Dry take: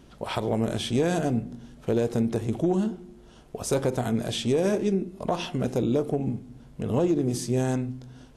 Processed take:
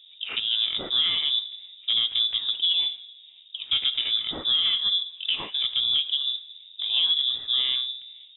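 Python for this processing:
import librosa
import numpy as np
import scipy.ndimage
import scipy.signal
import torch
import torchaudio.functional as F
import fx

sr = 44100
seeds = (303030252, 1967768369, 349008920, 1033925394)

y = fx.env_lowpass(x, sr, base_hz=690.0, full_db=-19.5)
y = fx.freq_invert(y, sr, carrier_hz=3700)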